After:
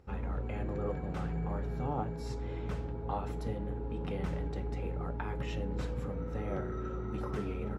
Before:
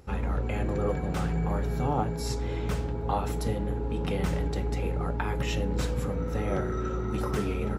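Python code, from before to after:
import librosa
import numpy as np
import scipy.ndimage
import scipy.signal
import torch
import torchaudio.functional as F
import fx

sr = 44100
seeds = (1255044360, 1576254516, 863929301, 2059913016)

y = fx.lowpass(x, sr, hz=2400.0, slope=6)
y = F.gain(torch.from_numpy(y), -7.0).numpy()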